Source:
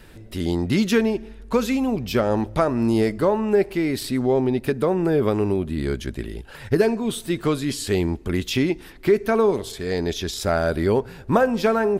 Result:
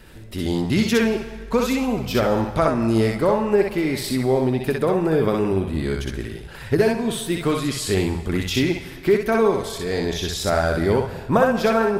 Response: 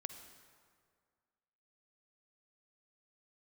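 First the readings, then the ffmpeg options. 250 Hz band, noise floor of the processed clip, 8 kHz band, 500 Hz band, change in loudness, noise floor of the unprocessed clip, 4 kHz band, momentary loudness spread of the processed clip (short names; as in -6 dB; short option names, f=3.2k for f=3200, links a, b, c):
+0.5 dB, -36 dBFS, +3.0 dB, +1.0 dB, +1.0 dB, -42 dBFS, +3.0 dB, 6 LU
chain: -filter_complex "[0:a]asplit=2[a][b];[b]equalizer=f=290:w=1.3:g=-13.5[c];[1:a]atrim=start_sample=2205,adelay=62[d];[c][d]afir=irnorm=-1:irlink=0,volume=2.5dB[e];[a][e]amix=inputs=2:normalize=0"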